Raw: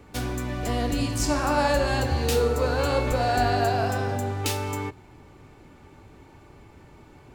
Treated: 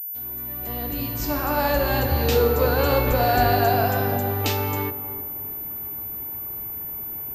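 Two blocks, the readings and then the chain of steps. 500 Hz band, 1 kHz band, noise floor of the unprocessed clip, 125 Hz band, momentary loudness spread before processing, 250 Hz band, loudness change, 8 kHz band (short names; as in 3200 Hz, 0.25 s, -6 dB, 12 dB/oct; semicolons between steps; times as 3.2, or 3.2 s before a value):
+3.0 dB, +3.0 dB, -51 dBFS, +2.0 dB, 8 LU, +1.0 dB, +2.0 dB, -4.5 dB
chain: opening faded in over 2.41 s; tape echo 0.31 s, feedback 46%, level -10 dB, low-pass 1000 Hz; pulse-width modulation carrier 14000 Hz; gain +3.5 dB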